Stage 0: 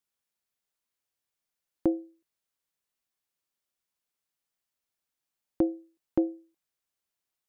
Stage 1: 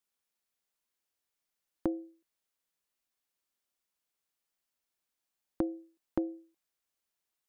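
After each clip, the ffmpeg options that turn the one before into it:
ffmpeg -i in.wav -af "equalizer=frequency=120:width=3.2:gain=-11.5,acompressor=threshold=-28dB:ratio=6" out.wav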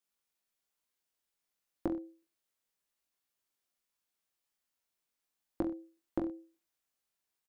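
ffmpeg -i in.wav -af "aecho=1:1:20|42|66.2|92.82|122.1:0.631|0.398|0.251|0.158|0.1,volume=-2.5dB" out.wav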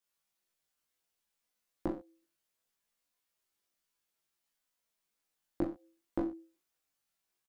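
ffmpeg -i in.wav -filter_complex "[0:a]flanger=delay=18:depth=2.7:speed=0.64,asplit=2[link_01][link_02];[link_02]adelay=14,volume=-5dB[link_03];[link_01][link_03]amix=inputs=2:normalize=0,volume=3.5dB" out.wav

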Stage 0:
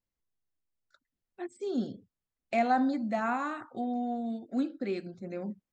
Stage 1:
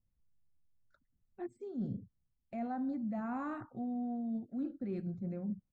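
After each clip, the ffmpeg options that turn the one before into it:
ffmpeg -i in.wav -af "firequalizer=gain_entry='entry(120,0);entry(330,-15);entry(3300,-29)':delay=0.05:min_phase=1,areverse,acompressor=threshold=-49dB:ratio=6,areverse,volume=13.5dB" out.wav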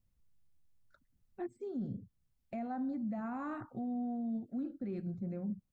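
ffmpeg -i in.wav -af "alimiter=level_in=11.5dB:limit=-24dB:level=0:latency=1:release=394,volume=-11.5dB,volume=4dB" out.wav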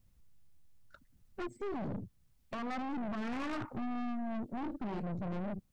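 ffmpeg -i in.wav -af "aeval=exprs='0.0133*(abs(mod(val(0)/0.0133+3,4)-2)-1)':channel_layout=same,aeval=exprs='(tanh(251*val(0)+0.6)-tanh(0.6))/251':channel_layout=same,volume=12dB" out.wav

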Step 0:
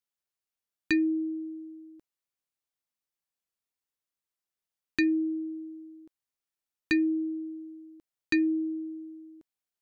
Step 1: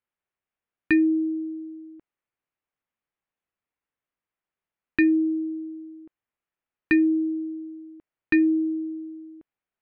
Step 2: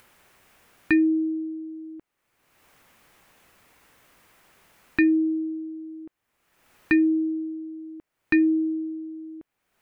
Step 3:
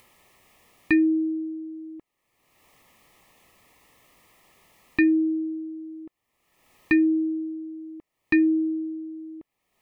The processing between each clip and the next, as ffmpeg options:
ffmpeg -i in.wav -af "lowpass=frequency=2600:width=0.5412,lowpass=frequency=2600:width=1.3066,volume=6dB" out.wav
ffmpeg -i in.wav -af "acompressor=mode=upward:threshold=-33dB:ratio=2.5" out.wav
ffmpeg -i in.wav -af "asuperstop=centerf=1500:order=8:qfactor=4" out.wav

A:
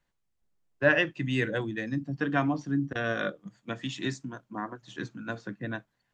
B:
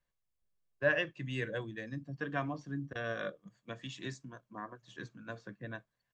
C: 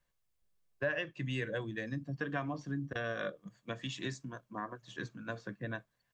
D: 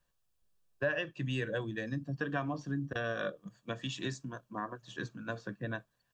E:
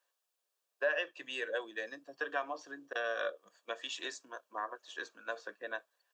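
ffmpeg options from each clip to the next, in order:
ffmpeg -i in.wav -af "aecho=1:1:1.8:0.35,volume=-8.5dB" out.wav
ffmpeg -i in.wav -af "acompressor=threshold=-38dB:ratio=3,volume=4.5dB" out.wav
ffmpeg -i in.wav -af "bandreject=frequency=2100:width=5.3,volume=2dB" out.wav
ffmpeg -i in.wav -af "highpass=frequency=450:width=0.5412,highpass=frequency=450:width=1.3066,volume=1dB" out.wav

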